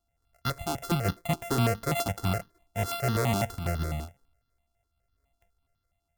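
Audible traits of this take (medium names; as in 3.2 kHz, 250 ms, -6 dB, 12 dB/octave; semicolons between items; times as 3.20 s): a buzz of ramps at a fixed pitch in blocks of 64 samples; notches that jump at a steady rate 12 Hz 510–2300 Hz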